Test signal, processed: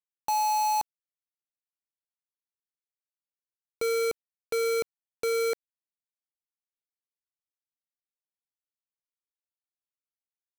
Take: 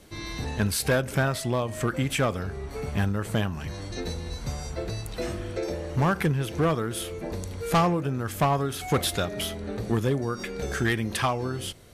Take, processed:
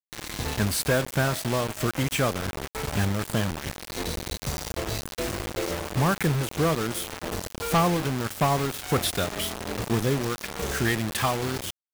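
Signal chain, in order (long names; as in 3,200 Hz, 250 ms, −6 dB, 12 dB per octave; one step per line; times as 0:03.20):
bit reduction 5 bits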